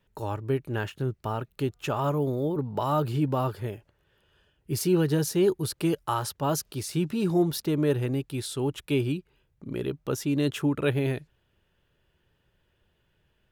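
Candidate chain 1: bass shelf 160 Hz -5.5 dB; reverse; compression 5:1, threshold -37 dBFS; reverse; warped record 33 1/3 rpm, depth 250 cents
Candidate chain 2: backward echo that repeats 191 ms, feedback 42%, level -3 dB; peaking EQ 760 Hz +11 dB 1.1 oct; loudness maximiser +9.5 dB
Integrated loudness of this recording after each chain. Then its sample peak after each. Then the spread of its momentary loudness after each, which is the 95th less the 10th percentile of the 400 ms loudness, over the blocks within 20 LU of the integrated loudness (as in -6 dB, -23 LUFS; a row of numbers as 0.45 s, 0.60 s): -40.0 LUFS, -14.0 LUFS; -24.5 dBFS, -1.0 dBFS; 5 LU, 10 LU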